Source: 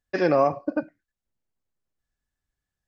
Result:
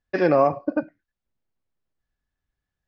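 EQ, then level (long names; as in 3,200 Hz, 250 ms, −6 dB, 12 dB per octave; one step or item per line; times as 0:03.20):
high-frequency loss of the air 130 metres
+2.5 dB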